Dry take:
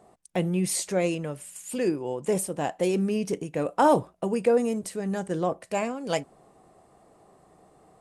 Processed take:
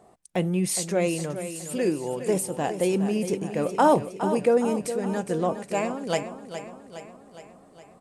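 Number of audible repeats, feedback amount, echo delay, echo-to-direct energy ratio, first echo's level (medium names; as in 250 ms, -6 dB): 6, 57%, 414 ms, -9.0 dB, -10.5 dB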